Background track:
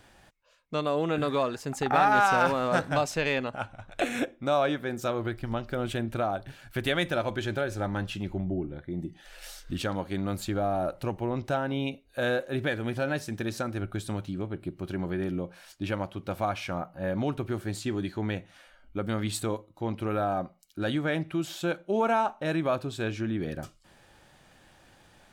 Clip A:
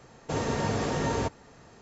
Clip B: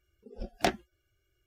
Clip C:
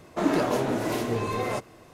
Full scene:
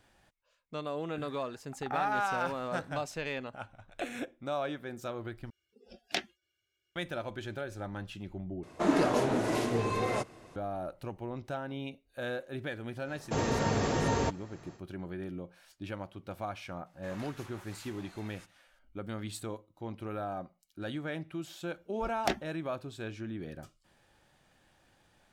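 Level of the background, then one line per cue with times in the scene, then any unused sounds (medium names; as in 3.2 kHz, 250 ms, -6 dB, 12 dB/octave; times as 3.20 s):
background track -9 dB
5.50 s: replace with B -10 dB + frequency weighting D
8.63 s: replace with C -2.5 dB + low-pass 11 kHz 24 dB/octave
13.02 s: add A -1 dB, fades 0.10 s
16.86 s: add C -15.5 dB + spectral gate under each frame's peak -15 dB weak
21.63 s: add B -3.5 dB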